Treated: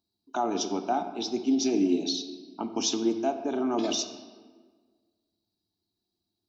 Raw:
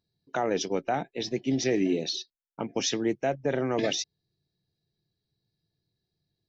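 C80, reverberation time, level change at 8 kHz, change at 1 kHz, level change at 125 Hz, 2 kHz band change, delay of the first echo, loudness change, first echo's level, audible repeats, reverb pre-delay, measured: 10.5 dB, 1.5 s, n/a, +2.0 dB, -10.5 dB, -7.5 dB, none, +0.5 dB, none, none, 3 ms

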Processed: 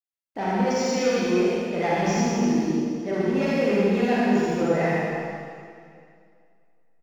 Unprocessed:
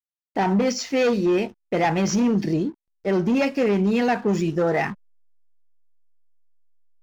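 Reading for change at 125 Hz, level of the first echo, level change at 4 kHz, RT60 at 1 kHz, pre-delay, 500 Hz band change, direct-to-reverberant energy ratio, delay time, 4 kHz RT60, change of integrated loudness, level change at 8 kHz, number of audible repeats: -1.5 dB, -3.0 dB, -1.0 dB, 2.3 s, 39 ms, -0.5 dB, -8.0 dB, 78 ms, 2.2 s, -1.0 dB, n/a, 1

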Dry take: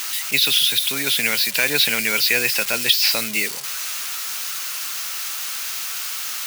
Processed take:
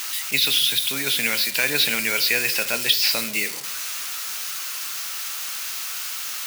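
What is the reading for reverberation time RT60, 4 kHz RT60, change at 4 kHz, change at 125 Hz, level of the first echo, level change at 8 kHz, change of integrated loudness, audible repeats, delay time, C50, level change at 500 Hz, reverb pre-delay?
0.85 s, 0.55 s, -2.5 dB, -2.0 dB, none, -2.5 dB, -2.5 dB, none, none, 14.5 dB, -2.5 dB, 15 ms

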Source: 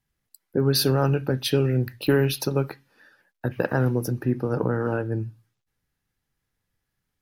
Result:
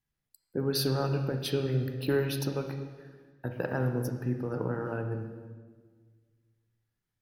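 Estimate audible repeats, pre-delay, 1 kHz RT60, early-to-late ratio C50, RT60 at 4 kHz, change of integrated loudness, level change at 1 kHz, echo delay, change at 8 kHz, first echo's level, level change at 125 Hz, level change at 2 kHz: none, 28 ms, 1.4 s, 7.0 dB, 1.3 s, -7.5 dB, -7.5 dB, none, -8.5 dB, none, -7.0 dB, -7.5 dB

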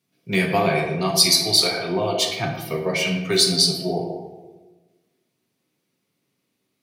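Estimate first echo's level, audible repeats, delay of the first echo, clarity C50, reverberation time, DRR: none, none, none, 5.0 dB, 1.2 s, 0.0 dB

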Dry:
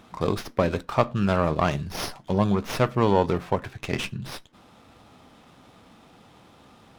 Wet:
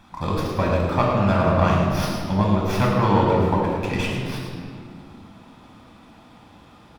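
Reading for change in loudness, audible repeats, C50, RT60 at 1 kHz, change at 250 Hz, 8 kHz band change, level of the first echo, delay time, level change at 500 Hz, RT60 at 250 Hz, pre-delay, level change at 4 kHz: +4.0 dB, 1, 0.0 dB, 2.0 s, +4.5 dB, +0.5 dB, -8.5 dB, 0.108 s, +2.5 dB, 3.6 s, 3 ms, +2.0 dB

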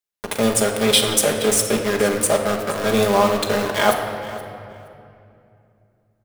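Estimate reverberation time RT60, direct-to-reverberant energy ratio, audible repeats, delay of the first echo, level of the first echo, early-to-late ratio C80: 2.6 s, 1.5 dB, 2, 0.472 s, -17.0 dB, 6.0 dB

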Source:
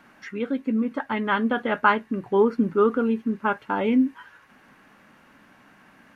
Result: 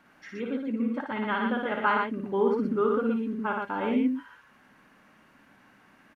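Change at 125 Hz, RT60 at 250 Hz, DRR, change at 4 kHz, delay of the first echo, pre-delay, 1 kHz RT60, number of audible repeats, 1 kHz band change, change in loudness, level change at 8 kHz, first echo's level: -4.5 dB, none, none, -4.5 dB, 57 ms, none, none, 2, -4.5 dB, -4.5 dB, n/a, -4.0 dB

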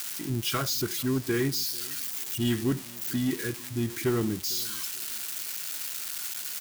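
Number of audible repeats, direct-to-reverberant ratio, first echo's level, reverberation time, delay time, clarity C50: 2, none, -23.0 dB, none, 0.449 s, none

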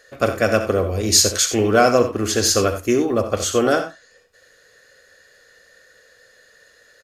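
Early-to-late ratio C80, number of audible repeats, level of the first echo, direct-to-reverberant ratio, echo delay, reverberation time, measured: none, 1, -11.5 dB, none, 64 ms, none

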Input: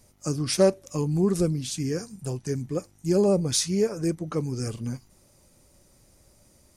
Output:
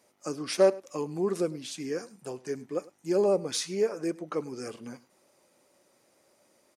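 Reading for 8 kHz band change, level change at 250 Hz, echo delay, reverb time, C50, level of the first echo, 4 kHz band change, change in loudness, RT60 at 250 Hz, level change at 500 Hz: -8.0 dB, -7.5 dB, 0.102 s, none, none, -21.5 dB, -5.5 dB, -4.0 dB, none, -1.5 dB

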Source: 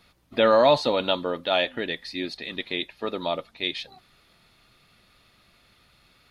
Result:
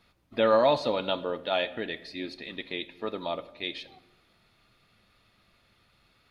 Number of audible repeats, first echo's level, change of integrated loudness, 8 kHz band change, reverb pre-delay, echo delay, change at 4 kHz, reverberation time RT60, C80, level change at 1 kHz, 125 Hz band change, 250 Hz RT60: none, none, -4.5 dB, n/a, 9 ms, none, -6.5 dB, 1.1 s, 18.5 dB, -4.5 dB, -4.5 dB, 1.3 s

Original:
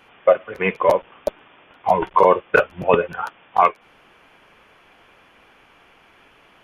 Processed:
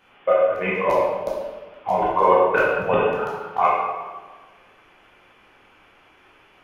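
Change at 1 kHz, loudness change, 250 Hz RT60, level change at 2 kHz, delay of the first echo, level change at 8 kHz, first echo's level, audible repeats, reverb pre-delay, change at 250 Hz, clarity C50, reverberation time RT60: -1.0 dB, -1.5 dB, 1.4 s, -1.5 dB, none, n/a, none, none, 13 ms, -1.0 dB, -0.5 dB, 1.3 s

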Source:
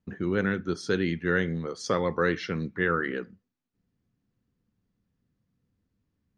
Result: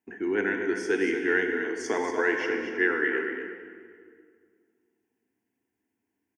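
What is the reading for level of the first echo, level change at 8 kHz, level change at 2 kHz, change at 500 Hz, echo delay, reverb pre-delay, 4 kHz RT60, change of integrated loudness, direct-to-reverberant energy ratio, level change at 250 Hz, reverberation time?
-8.5 dB, +1.0 dB, +4.5 dB, +2.0 dB, 0.237 s, 34 ms, 1.6 s, +1.5 dB, 3.0 dB, -0.5 dB, 2.1 s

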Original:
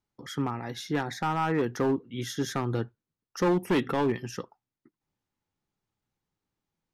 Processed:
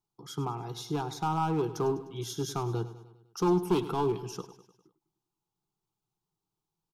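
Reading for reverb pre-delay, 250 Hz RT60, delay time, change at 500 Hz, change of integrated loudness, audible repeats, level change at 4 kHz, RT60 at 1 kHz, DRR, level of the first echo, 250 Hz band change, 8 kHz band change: none, none, 0.101 s, -1.5 dB, -2.0 dB, 4, -3.0 dB, none, none, -14.5 dB, -3.0 dB, -0.5 dB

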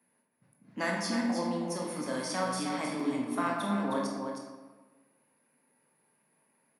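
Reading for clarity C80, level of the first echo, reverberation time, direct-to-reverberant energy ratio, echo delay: 1.5 dB, -7.0 dB, 1.3 s, -2.5 dB, 0.314 s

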